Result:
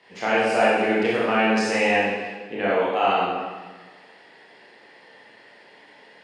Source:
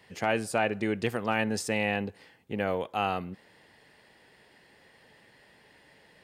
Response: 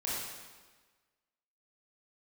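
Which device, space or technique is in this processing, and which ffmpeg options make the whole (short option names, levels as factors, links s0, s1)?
supermarket ceiling speaker: -filter_complex "[0:a]highpass=270,lowpass=5200[s0];[1:a]atrim=start_sample=2205[s1];[s0][s1]afir=irnorm=-1:irlink=0,volume=1.78"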